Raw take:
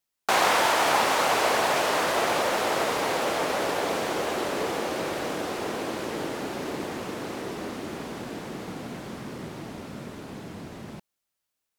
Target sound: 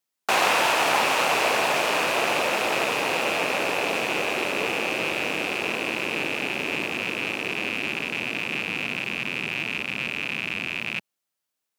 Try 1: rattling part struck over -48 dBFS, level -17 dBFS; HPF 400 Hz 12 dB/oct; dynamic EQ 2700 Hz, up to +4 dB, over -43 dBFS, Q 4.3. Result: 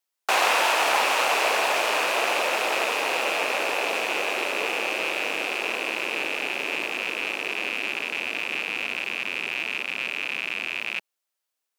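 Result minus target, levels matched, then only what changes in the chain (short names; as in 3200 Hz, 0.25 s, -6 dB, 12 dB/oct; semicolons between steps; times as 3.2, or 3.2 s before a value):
125 Hz band -14.5 dB
change: HPF 120 Hz 12 dB/oct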